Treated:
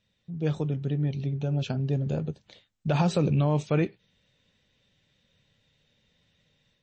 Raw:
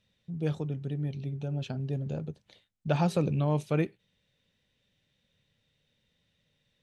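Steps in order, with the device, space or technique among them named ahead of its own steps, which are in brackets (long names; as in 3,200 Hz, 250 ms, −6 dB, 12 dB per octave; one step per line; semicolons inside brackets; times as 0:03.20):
low-bitrate web radio (automatic gain control gain up to 6 dB; brickwall limiter −13.5 dBFS, peak gain reduction 6.5 dB; MP3 32 kbit/s 22,050 Hz)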